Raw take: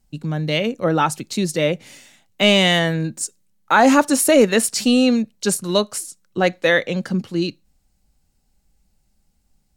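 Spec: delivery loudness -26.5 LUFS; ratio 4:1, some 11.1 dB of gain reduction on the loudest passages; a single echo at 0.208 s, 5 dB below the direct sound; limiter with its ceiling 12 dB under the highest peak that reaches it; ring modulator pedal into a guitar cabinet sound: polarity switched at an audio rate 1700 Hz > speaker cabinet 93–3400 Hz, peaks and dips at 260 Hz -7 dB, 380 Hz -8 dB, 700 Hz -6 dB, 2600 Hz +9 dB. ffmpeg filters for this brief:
-af "acompressor=threshold=-22dB:ratio=4,alimiter=limit=-21dB:level=0:latency=1,aecho=1:1:208:0.562,aeval=exprs='val(0)*sgn(sin(2*PI*1700*n/s))':c=same,highpass=93,equalizer=f=260:t=q:w=4:g=-7,equalizer=f=380:t=q:w=4:g=-8,equalizer=f=700:t=q:w=4:g=-6,equalizer=f=2.6k:t=q:w=4:g=9,lowpass=f=3.4k:w=0.5412,lowpass=f=3.4k:w=1.3066,volume=1dB"

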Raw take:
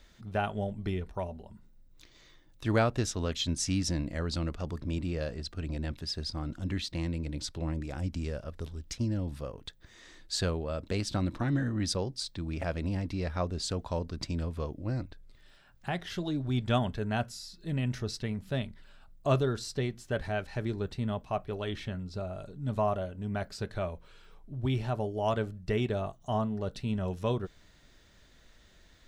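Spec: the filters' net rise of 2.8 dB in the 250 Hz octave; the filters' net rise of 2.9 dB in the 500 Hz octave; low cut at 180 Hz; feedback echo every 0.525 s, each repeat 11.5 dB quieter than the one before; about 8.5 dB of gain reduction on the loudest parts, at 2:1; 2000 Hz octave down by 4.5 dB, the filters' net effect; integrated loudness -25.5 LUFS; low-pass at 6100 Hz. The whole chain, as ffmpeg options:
-af "highpass=180,lowpass=6.1k,equalizer=f=250:t=o:g=4.5,equalizer=f=500:t=o:g=3,equalizer=f=2k:t=o:g=-6.5,acompressor=threshold=-35dB:ratio=2,aecho=1:1:525|1050|1575:0.266|0.0718|0.0194,volume=12dB"

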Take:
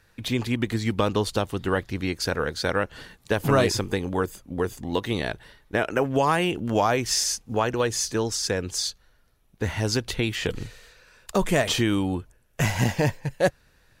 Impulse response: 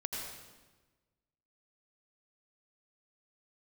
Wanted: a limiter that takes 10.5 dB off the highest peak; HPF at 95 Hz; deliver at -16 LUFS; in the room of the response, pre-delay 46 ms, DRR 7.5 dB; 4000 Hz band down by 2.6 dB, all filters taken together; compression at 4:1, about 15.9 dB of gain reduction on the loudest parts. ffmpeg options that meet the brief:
-filter_complex "[0:a]highpass=95,equalizer=f=4k:t=o:g=-3.5,acompressor=threshold=-37dB:ratio=4,alimiter=level_in=7dB:limit=-24dB:level=0:latency=1,volume=-7dB,asplit=2[a][b];[1:a]atrim=start_sample=2205,adelay=46[c];[b][c]afir=irnorm=-1:irlink=0,volume=-9.5dB[d];[a][d]amix=inputs=2:normalize=0,volume=25.5dB"

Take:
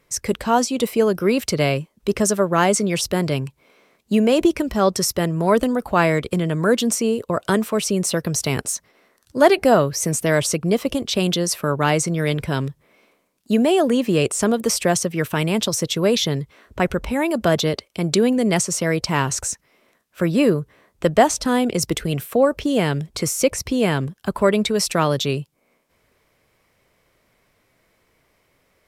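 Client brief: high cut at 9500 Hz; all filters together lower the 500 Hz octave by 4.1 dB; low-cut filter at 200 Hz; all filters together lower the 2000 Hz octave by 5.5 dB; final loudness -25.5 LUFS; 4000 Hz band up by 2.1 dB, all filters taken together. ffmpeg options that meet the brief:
-af "highpass=200,lowpass=9.5k,equalizer=f=500:t=o:g=-4.5,equalizer=f=2k:t=o:g=-8.5,equalizer=f=4k:t=o:g=5.5,volume=-3dB"

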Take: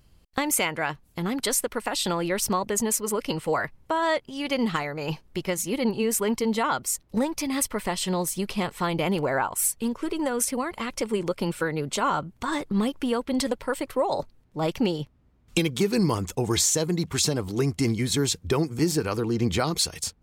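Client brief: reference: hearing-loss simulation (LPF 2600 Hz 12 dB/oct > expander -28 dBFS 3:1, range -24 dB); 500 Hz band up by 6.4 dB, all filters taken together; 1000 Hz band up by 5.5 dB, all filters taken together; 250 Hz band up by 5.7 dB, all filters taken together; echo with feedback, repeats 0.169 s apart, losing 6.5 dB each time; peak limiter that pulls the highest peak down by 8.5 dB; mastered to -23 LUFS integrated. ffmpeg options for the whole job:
-af "equalizer=f=250:t=o:g=5.5,equalizer=f=500:t=o:g=5,equalizer=f=1k:t=o:g=5,alimiter=limit=-14.5dB:level=0:latency=1,lowpass=2.6k,aecho=1:1:169|338|507|676|845|1014:0.473|0.222|0.105|0.0491|0.0231|0.0109,agate=range=-24dB:threshold=-28dB:ratio=3,volume=1dB"

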